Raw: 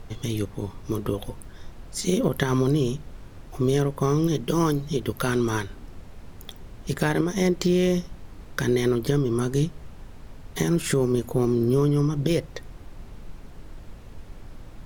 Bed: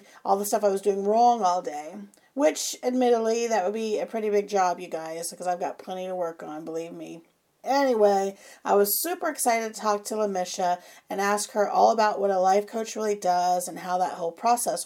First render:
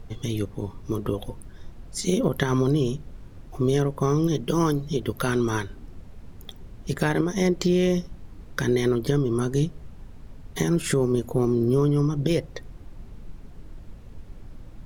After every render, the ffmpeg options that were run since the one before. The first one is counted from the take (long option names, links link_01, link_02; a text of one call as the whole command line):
ffmpeg -i in.wav -af "afftdn=noise_reduction=6:noise_floor=-44" out.wav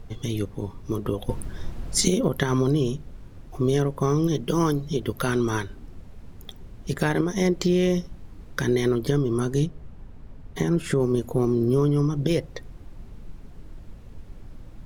ffmpeg -i in.wav -filter_complex "[0:a]asettb=1/sr,asplit=3[link_01][link_02][link_03];[link_01]atrim=end=9.664[link_04];[link_02]atrim=start=9.66:end=11,asetpts=PTS-STARTPTS,afade=type=in:duration=0.004:curve=qsin,afade=type=out:start_time=1.336:duration=0.004:curve=qsin,highshelf=frequency=3400:gain=-9[link_05];[link_03]atrim=start=10.996[link_06];[link_04][link_05]acrossfade=duration=0.004:curve1=hsin:curve2=qsin[link_07];[link_07][link_06]acrossfade=duration=0.004:curve1=qsin:curve2=hsin,asplit=3[link_08][link_09][link_10];[link_08]atrim=end=1.292[link_11];[link_09]atrim=start=1.288:end=2.082,asetpts=PTS-STARTPTS,volume=9dB[link_12];[link_10]atrim=start=2.078[link_13];[link_11][link_12]acrossfade=duration=0.004:curve1=hsin:curve2=hsin[link_14];[link_14][link_13]acrossfade=duration=0.004:curve1=hsin:curve2=hsin" out.wav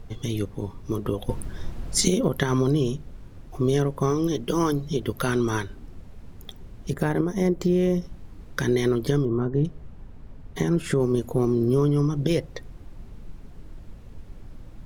ffmpeg -i in.wav -filter_complex "[0:a]asettb=1/sr,asplit=3[link_01][link_02][link_03];[link_01]atrim=end=4.104[link_04];[link_02]atrim=start=4.1:end=4.73,asetpts=PTS-STARTPTS,afade=type=in:duration=0.004:curve=qsin,afade=type=out:start_time=0.626:duration=0.004:curve=qsin,equalizer=frequency=150:width_type=o:width=0.26:gain=-9[link_05];[link_03]atrim=start=4.726[link_06];[link_04][link_05]acrossfade=duration=0.004:curve1=hsin:curve2=qsin[link_07];[link_07][link_06]acrossfade=duration=0.004:curve1=qsin:curve2=hsin,asettb=1/sr,asplit=3[link_08][link_09][link_10];[link_08]atrim=end=6.904[link_11];[link_09]atrim=start=6.9:end=8.02,asetpts=PTS-STARTPTS,afade=type=in:duration=0.004:curve=qsin,afade=type=out:start_time=1.116:duration=0.004:curve=qsin,equalizer=frequency=4100:width=0.48:gain=-10[link_12];[link_10]atrim=start=8.016[link_13];[link_11][link_12]acrossfade=duration=0.004:curve1=hsin:curve2=qsin[link_14];[link_14][link_13]acrossfade=duration=0.004:curve1=qsin:curve2=hsin,asettb=1/sr,asplit=3[link_15][link_16][link_17];[link_15]atrim=end=9.254[link_18];[link_16]atrim=start=9.25:end=9.65,asetpts=PTS-STARTPTS,afade=type=in:duration=0.004:curve=qsin,afade=type=out:start_time=0.396:duration=0.004:curve=qsin,lowpass=1200[link_19];[link_17]atrim=start=9.646[link_20];[link_18][link_19]acrossfade=duration=0.004:curve1=hsin:curve2=qsin[link_21];[link_21][link_20]acrossfade=duration=0.004:curve1=qsin:curve2=hsin" out.wav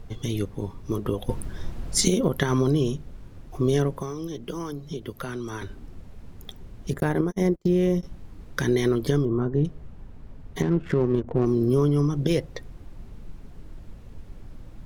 ffmpeg -i in.wav -filter_complex "[0:a]asettb=1/sr,asplit=3[link_01][link_02][link_03];[link_01]atrim=end=3.924[link_04];[link_02]atrim=start=3.92:end=5.62,asetpts=PTS-STARTPTS,afade=type=in:duration=0.004:curve=qsin,afade=type=out:start_time=1.696:duration=0.004:curve=qsin,acrossover=split=180|2700[link_05][link_06][link_07];[link_05]acompressor=threshold=-40dB:ratio=4[link_08];[link_06]acompressor=threshold=-33dB:ratio=4[link_09];[link_07]acompressor=threshold=-49dB:ratio=4[link_10];[link_08][link_09][link_10]amix=inputs=3:normalize=0[link_11];[link_03]atrim=start=5.616[link_12];[link_04][link_11]acrossfade=duration=0.004:curve1=hsin:curve2=qsin[link_13];[link_13][link_12]acrossfade=duration=0.004:curve1=qsin:curve2=hsin,asettb=1/sr,asplit=3[link_14][link_15][link_16];[link_14]atrim=end=7.004[link_17];[link_15]atrim=start=7:end=8.03,asetpts=PTS-STARTPTS,afade=type=in:duration=0.004:curve=qsin,afade=type=out:start_time=1.026:duration=0.004:curve=qsin,agate=range=-35dB:threshold=-28dB:ratio=16:release=100:detection=peak[link_18];[link_16]atrim=start=8.026[link_19];[link_17][link_18]acrossfade=duration=0.004:curve1=hsin:curve2=qsin[link_20];[link_20][link_19]acrossfade=duration=0.004:curve1=qsin:curve2=hsin,asettb=1/sr,asplit=3[link_21][link_22][link_23];[link_21]atrim=end=10.624[link_24];[link_22]atrim=start=10.62:end=11.46,asetpts=PTS-STARTPTS,afade=type=in:duration=0.004:curve=qsin,afade=type=out:start_time=0.836:duration=0.004:curve=qsin,adynamicsmooth=sensitivity=3:basefreq=680[link_25];[link_23]atrim=start=11.456[link_26];[link_24][link_25]acrossfade=duration=0.004:curve1=hsin:curve2=qsin[link_27];[link_27][link_26]acrossfade=duration=0.004:curve1=qsin:curve2=hsin" out.wav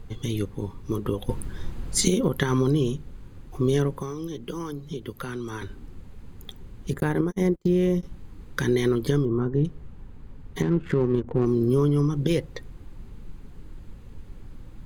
ffmpeg -i in.wav -af "equalizer=frequency=650:width=7:gain=-12,bandreject=frequency=5500:width=8.3" out.wav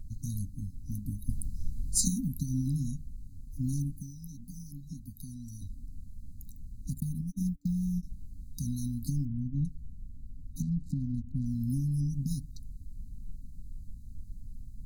ffmpeg -i in.wav -af "afftfilt=real='re*(1-between(b*sr/4096,280,3800))':imag='im*(1-between(b*sr/4096,280,3800))':win_size=4096:overlap=0.75,equalizer=frequency=125:width_type=o:width=1:gain=-5,equalizer=frequency=250:width_type=o:width=1:gain=-7,equalizer=frequency=4000:width_type=o:width=1:gain=-11" out.wav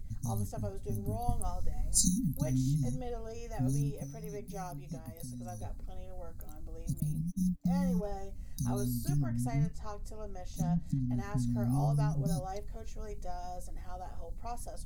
ffmpeg -i in.wav -i bed.wav -filter_complex "[1:a]volume=-20.5dB[link_01];[0:a][link_01]amix=inputs=2:normalize=0" out.wav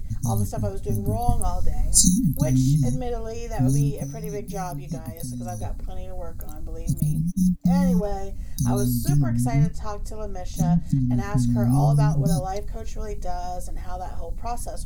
ffmpeg -i in.wav -af "volume=11dB" out.wav